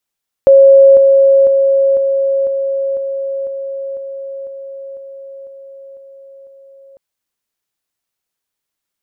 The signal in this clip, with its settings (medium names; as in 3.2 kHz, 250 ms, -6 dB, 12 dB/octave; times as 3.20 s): level ladder 546 Hz -2 dBFS, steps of -3 dB, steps 13, 0.50 s 0.00 s